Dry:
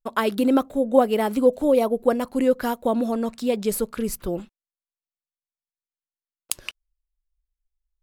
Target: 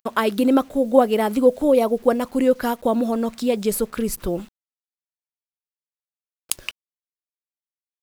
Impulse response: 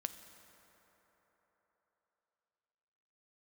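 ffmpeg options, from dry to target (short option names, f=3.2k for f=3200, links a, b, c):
-filter_complex "[0:a]agate=range=-33dB:threshold=-39dB:ratio=3:detection=peak,asplit=2[a][b];[b]acompressor=mode=upward:threshold=-20dB:ratio=2.5,volume=-2dB[c];[a][c]amix=inputs=2:normalize=0,acrusher=bits=7:mix=0:aa=0.000001,volume=-3dB"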